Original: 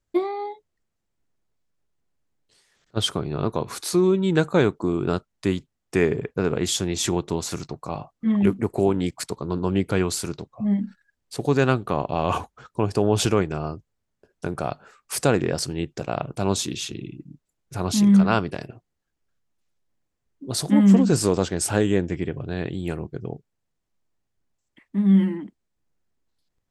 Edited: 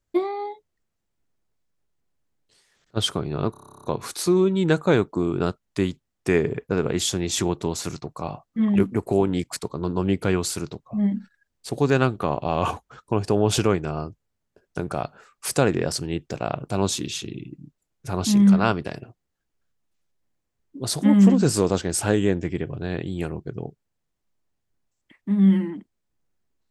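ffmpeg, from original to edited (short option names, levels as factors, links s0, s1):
-filter_complex "[0:a]asplit=12[s0][s1][s2][s3][s4][s5][s6][s7][s8][s9][s10][s11];[s0]atrim=end=3.542[s12];[s1]atrim=start=3.508:end=3.542[s13];[s2]atrim=start=3.508:end=3.542[s14];[s3]atrim=start=3.508:end=3.542[s15];[s4]atrim=start=3.508:end=3.542[s16];[s5]atrim=start=3.508:end=3.542[s17];[s6]atrim=start=3.508:end=3.542[s18];[s7]atrim=start=3.508:end=3.542[s19];[s8]atrim=start=3.508:end=3.542[s20];[s9]atrim=start=3.508:end=3.542[s21];[s10]atrim=start=3.508:end=3.542[s22];[s11]atrim=start=3.508[s23];[s12][s13]acrossfade=d=0.004:c1=hsin:c2=hsin[s24];[s24][s14]acrossfade=d=0.004:c1=hsin:c2=hsin[s25];[s25][s15]acrossfade=d=0.004:c1=hsin:c2=hsin[s26];[s26][s16]acrossfade=d=0.004:c1=hsin:c2=hsin[s27];[s27][s17]acrossfade=d=0.004:c1=hsin:c2=hsin[s28];[s28][s18]acrossfade=d=0.004:c1=hsin:c2=hsin[s29];[s29][s19]acrossfade=d=0.004:c1=hsin:c2=hsin[s30];[s30][s20]acrossfade=d=0.004:c1=hsin:c2=hsin[s31];[s31][s21]acrossfade=d=0.004:c1=hsin:c2=hsin[s32];[s32][s22]acrossfade=d=0.004:c1=hsin:c2=hsin[s33];[s33][s23]acrossfade=d=0.004:c1=hsin:c2=hsin"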